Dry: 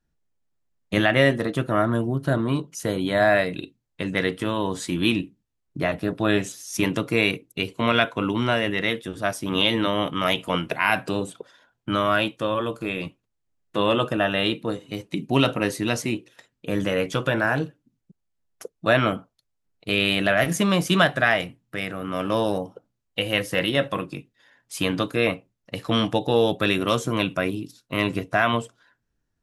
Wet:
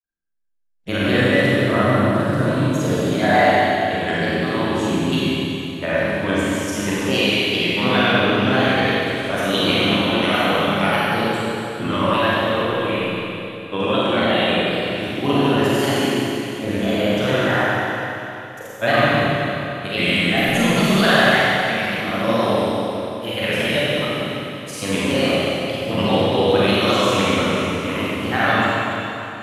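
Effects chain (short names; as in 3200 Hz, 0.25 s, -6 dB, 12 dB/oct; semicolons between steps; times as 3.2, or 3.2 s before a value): spectral noise reduction 17 dB; grains, pitch spread up and down by 3 st; Schroeder reverb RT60 3.1 s, combs from 31 ms, DRR -8 dB; gain -2 dB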